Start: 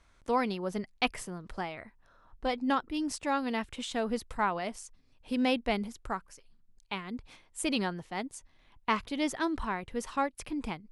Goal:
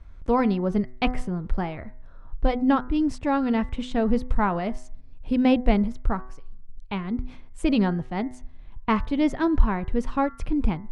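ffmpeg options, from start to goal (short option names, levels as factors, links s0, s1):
-af "aemphasis=mode=reproduction:type=riaa,bandreject=f=125.5:t=h:w=4,bandreject=f=251:t=h:w=4,bandreject=f=376.5:t=h:w=4,bandreject=f=502:t=h:w=4,bandreject=f=627.5:t=h:w=4,bandreject=f=753:t=h:w=4,bandreject=f=878.5:t=h:w=4,bandreject=f=1004:t=h:w=4,bandreject=f=1129.5:t=h:w=4,bandreject=f=1255:t=h:w=4,bandreject=f=1380.5:t=h:w=4,bandreject=f=1506:t=h:w=4,bandreject=f=1631.5:t=h:w=4,bandreject=f=1757:t=h:w=4,bandreject=f=1882.5:t=h:w=4,bandreject=f=2008:t=h:w=4,bandreject=f=2133.5:t=h:w=4,volume=1.68"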